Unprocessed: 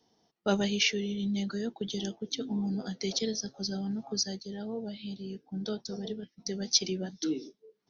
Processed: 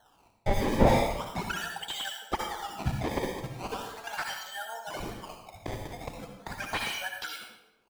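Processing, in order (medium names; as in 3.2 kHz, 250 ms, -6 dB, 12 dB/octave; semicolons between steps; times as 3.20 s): 3.47–4.30 s: comb filter that takes the minimum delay 4.4 ms; low-pass 3.1 kHz 24 dB/octave; reverb removal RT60 0.54 s; high-pass 950 Hz 24 dB/octave; comb 1.3 ms, depth 85%; 2.47–2.92 s: dynamic bell 1.4 kHz, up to +7 dB, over -58 dBFS, Q 0.74; in parallel at +0.5 dB: compression, threshold -51 dBFS, peak gain reduction 25.5 dB; on the sum: decimation with a swept rate 18×, swing 160% 0.39 Hz; on a send at -3 dB: reverberation RT60 0.85 s, pre-delay 56 ms; on the sum: slew-rate limiter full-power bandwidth 34 Hz; trim +8.5 dB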